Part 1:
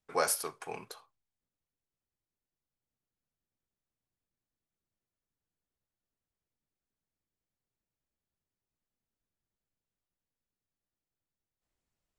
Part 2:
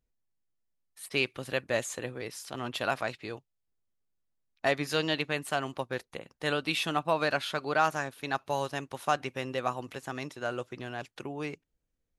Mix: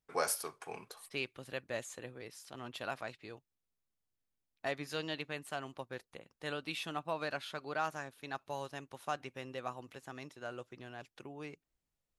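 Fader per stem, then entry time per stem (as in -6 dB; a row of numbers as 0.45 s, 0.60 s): -4.0 dB, -10.0 dB; 0.00 s, 0.00 s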